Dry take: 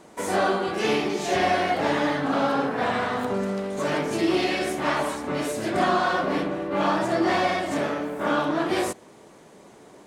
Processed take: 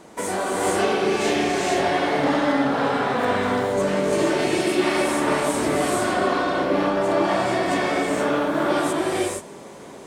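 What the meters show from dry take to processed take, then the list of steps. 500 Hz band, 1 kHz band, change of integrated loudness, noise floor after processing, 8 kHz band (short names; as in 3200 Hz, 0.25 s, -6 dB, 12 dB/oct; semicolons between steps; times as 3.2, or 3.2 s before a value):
+4.0 dB, +2.0 dB, +3.0 dB, -40 dBFS, +7.5 dB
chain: compressor, threshold -27 dBFS, peak gain reduction 9.5 dB; non-linear reverb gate 0.5 s rising, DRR -4 dB; dynamic EQ 8500 Hz, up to +5 dB, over -54 dBFS, Q 4; gain +3.5 dB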